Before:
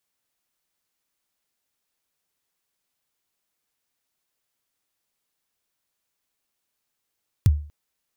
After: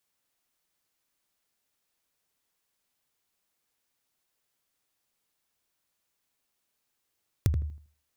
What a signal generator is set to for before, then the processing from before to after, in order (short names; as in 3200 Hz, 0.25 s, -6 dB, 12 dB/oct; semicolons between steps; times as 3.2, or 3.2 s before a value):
kick drum length 0.24 s, from 130 Hz, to 74 Hz, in 34 ms, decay 0.41 s, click on, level -9 dB
compressor 5:1, threshold -23 dBFS; on a send: darkening echo 80 ms, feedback 25%, low-pass 1300 Hz, level -7 dB